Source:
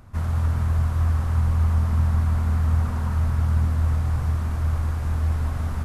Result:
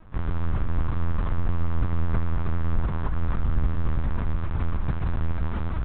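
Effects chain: LPC vocoder at 8 kHz pitch kept

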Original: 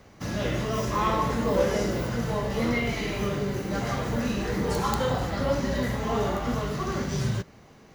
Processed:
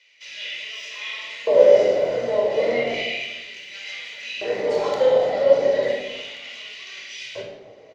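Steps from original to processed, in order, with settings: high-order bell 1.2 kHz -12 dB 1.1 oct; LFO high-pass square 0.34 Hz 600–2600 Hz; distance through air 150 m; frequency-shifting echo 81 ms, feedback 31%, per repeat -96 Hz, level -18 dB; simulated room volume 3500 m³, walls furnished, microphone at 4.8 m; trim +2 dB

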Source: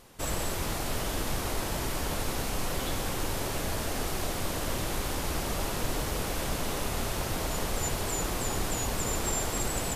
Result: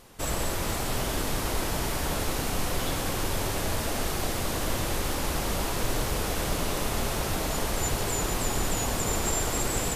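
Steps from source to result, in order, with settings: two-band feedback delay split 2 kHz, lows 99 ms, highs 458 ms, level -8 dB; trim +2 dB

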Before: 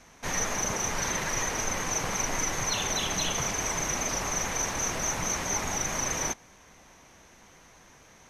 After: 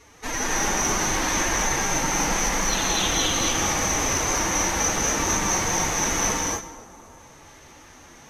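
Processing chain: time-frequency box 6.30–7.19 s, 1.4–5.9 kHz -6 dB; two-band feedback delay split 1.4 kHz, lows 256 ms, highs 100 ms, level -15 dB; in parallel at -11 dB: overload inside the chain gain 24.5 dB; on the sum: formant-preserving pitch shift +10 st; gated-style reverb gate 290 ms rising, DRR -2.5 dB; trim +1 dB

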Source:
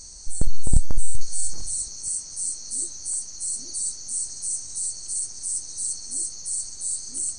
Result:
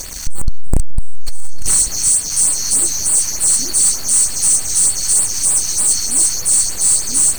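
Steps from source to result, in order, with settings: waveshaping leveller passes 5; LFO notch sine 3.3 Hz 430–6400 Hz

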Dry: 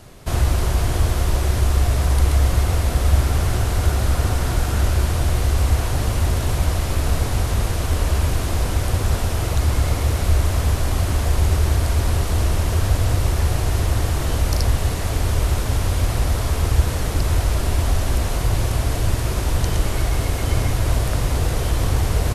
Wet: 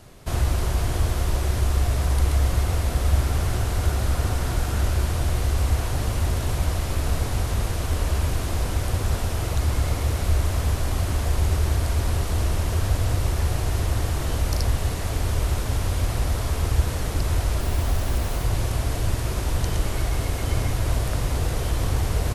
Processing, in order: 17.60–18.44 s: careless resampling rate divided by 2×, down none, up hold; trim -4 dB

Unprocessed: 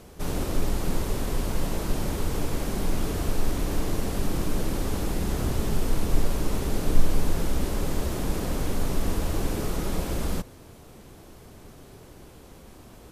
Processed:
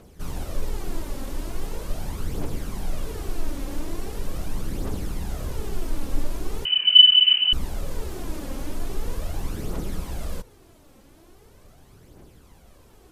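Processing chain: phaser 0.41 Hz, delay 3.8 ms, feedback 48%; 6.65–7.53 s: frequency inversion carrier 3 kHz; trim -6 dB

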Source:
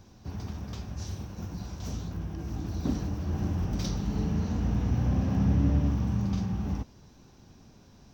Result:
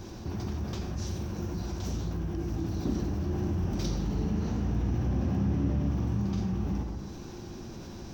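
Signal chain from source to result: peaking EQ 350 Hz +10 dB 0.24 oct; reverberation RT60 0.80 s, pre-delay 58 ms, DRR 7.5 dB; level flattener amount 50%; trim -5.5 dB

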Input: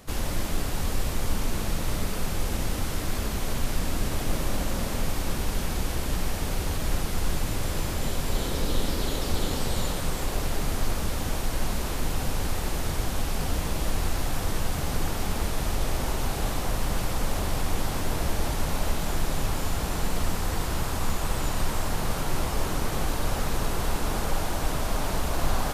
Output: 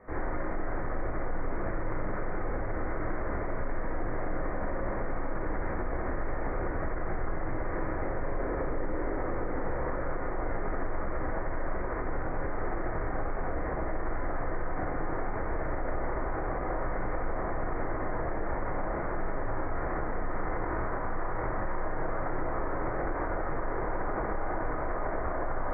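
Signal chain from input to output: steep low-pass 2.1 kHz 96 dB/octave; resonant low shelf 270 Hz -7 dB, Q 1.5; reverberation RT60 0.45 s, pre-delay 18 ms, DRR -4 dB; peak limiter -19 dBFS, peak gain reduction 9.5 dB; trim -3.5 dB

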